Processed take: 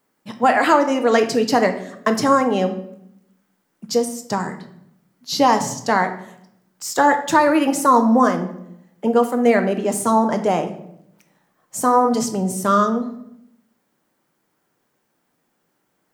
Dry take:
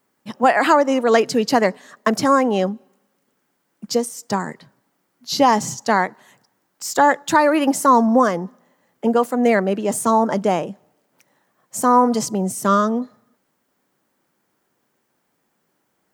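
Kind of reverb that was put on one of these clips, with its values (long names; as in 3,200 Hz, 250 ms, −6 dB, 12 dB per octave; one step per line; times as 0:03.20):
rectangular room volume 170 cubic metres, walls mixed, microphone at 0.48 metres
level −1 dB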